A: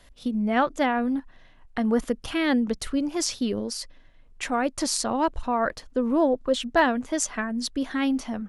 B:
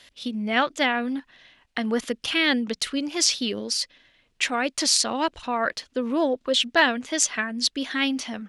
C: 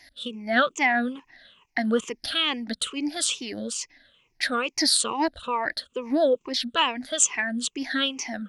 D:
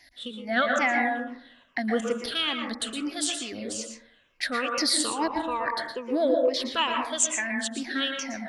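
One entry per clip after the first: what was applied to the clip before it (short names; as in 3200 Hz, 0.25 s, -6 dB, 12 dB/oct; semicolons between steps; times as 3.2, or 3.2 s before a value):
weighting filter D; gain -1 dB
moving spectral ripple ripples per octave 0.74, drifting -2.3 Hz, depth 19 dB; gain -4.5 dB
plate-style reverb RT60 0.59 s, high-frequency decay 0.25×, pre-delay 0.105 s, DRR 1.5 dB; gain -3.5 dB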